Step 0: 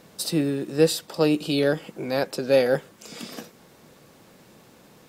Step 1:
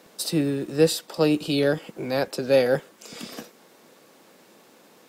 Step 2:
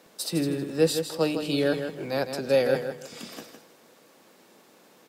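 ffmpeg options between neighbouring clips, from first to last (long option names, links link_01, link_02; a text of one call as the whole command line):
ffmpeg -i in.wav -filter_complex "[0:a]equalizer=frequency=110:width=7.3:gain=8.5,acrossover=split=200[link_01][link_02];[link_01]aeval=exprs='val(0)*gte(abs(val(0)),0.00422)':channel_layout=same[link_03];[link_03][link_02]amix=inputs=2:normalize=0" out.wav
ffmpeg -i in.wav -filter_complex "[0:a]bandreject=frequency=50.21:width_type=h:width=4,bandreject=frequency=100.42:width_type=h:width=4,bandreject=frequency=150.63:width_type=h:width=4,bandreject=frequency=200.84:width_type=h:width=4,bandreject=frequency=251.05:width_type=h:width=4,bandreject=frequency=301.26:width_type=h:width=4,bandreject=frequency=351.47:width_type=h:width=4,bandreject=frequency=401.68:width_type=h:width=4,bandreject=frequency=451.89:width_type=h:width=4,asplit=2[link_01][link_02];[link_02]aecho=0:1:159|318|477:0.398|0.0995|0.0249[link_03];[link_01][link_03]amix=inputs=2:normalize=0,volume=-3dB" out.wav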